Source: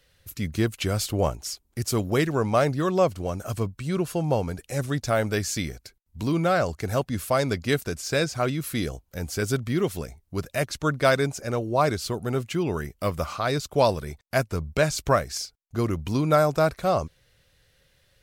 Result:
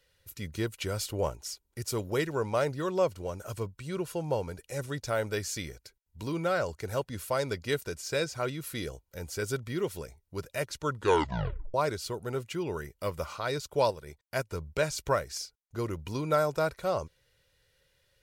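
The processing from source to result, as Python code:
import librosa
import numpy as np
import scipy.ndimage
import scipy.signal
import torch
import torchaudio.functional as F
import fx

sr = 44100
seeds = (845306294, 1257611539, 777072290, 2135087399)

y = fx.transient(x, sr, attack_db=-1, sustain_db=-7, at=(13.89, 14.44), fade=0.02)
y = fx.edit(y, sr, fx.tape_stop(start_s=10.84, length_s=0.9), tone=tone)
y = fx.low_shelf(y, sr, hz=150.0, db=-5.0)
y = y + 0.38 * np.pad(y, (int(2.1 * sr / 1000.0), 0))[:len(y)]
y = y * 10.0 ** (-6.5 / 20.0)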